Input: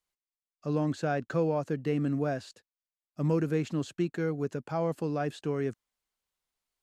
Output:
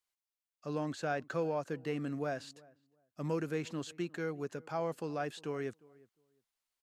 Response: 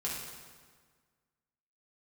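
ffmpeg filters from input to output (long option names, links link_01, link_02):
-filter_complex "[0:a]lowshelf=frequency=410:gain=-10,asplit=2[link_01][link_02];[link_02]adelay=355,lowpass=frequency=1300:poles=1,volume=-23dB,asplit=2[link_03][link_04];[link_04]adelay=355,lowpass=frequency=1300:poles=1,volume=0.2[link_05];[link_03][link_05]amix=inputs=2:normalize=0[link_06];[link_01][link_06]amix=inputs=2:normalize=0,volume=-1.5dB"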